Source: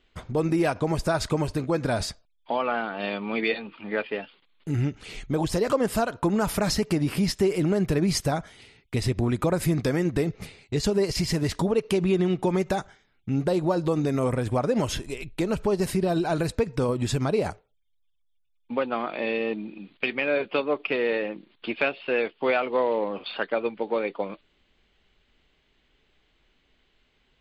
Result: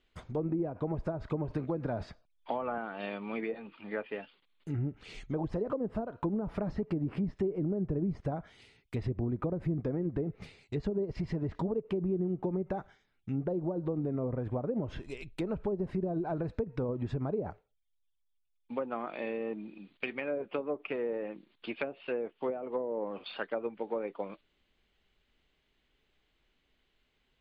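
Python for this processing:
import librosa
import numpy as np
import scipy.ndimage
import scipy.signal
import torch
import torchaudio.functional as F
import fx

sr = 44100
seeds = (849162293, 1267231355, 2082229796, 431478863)

y = fx.env_lowpass_down(x, sr, base_hz=480.0, full_db=-19.0)
y = fx.band_squash(y, sr, depth_pct=70, at=(1.5, 2.78))
y = y * librosa.db_to_amplitude(-8.0)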